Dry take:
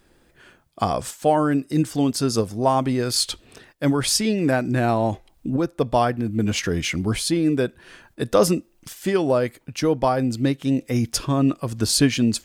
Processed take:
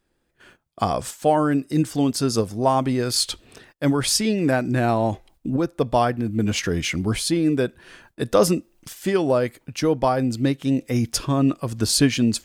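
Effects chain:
noise gate −51 dBFS, range −13 dB

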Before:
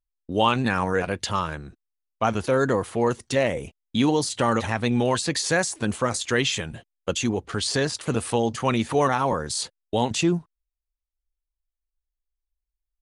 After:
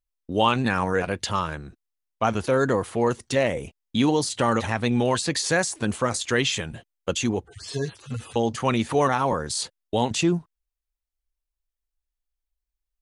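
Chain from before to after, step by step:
0:07.41–0:08.36: harmonic-percussive split with one part muted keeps harmonic

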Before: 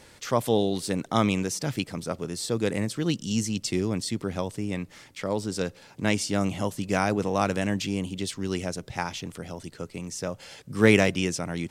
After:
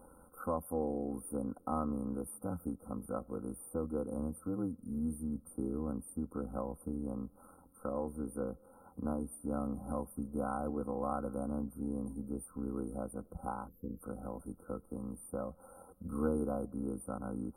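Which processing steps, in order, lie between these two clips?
gain on a spectral selection 0:09.12–0:09.34, 530–11,000 Hz −27 dB
downward compressor 2 to 1, threshold −34 dBFS, peak gain reduction 12 dB
time stretch by overlap-add 1.5×, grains 23 ms
linear-phase brick-wall band-stop 1,500–8,700 Hz
level −2.5 dB

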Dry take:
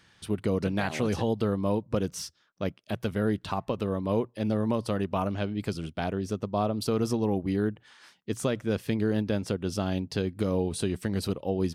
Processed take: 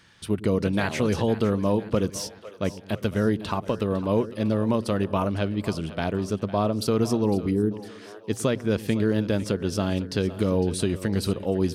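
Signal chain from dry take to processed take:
on a send: echo with a time of its own for lows and highs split 430 Hz, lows 108 ms, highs 505 ms, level −15 dB
on the sum: gain on a spectral selection 0:07.51–0:07.71, 510–7,500 Hz −13 dB
notch filter 760 Hz, Q 12
level +4 dB

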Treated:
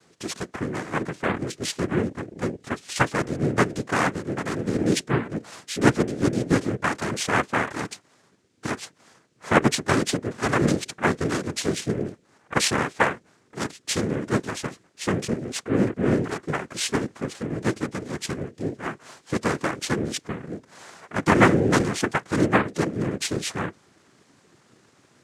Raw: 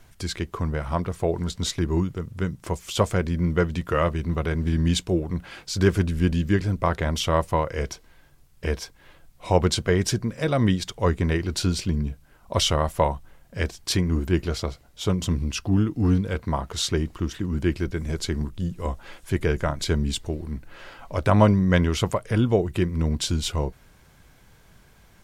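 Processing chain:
harmonic generator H 3 −20 dB, 7 −35 dB, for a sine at −4.5 dBFS
cochlear-implant simulation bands 3
level +3.5 dB

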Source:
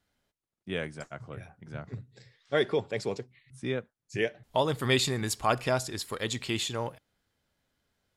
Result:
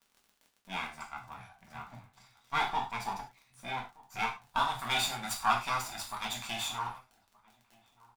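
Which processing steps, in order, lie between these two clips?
lower of the sound and its delayed copy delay 0.83 ms
low shelf with overshoot 570 Hz −9 dB, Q 3
surface crackle 42 per second −43 dBFS
slap from a distant wall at 210 metres, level −23 dB
reverb whose tail is shaped and stops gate 130 ms falling, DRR −0.5 dB
level −5 dB

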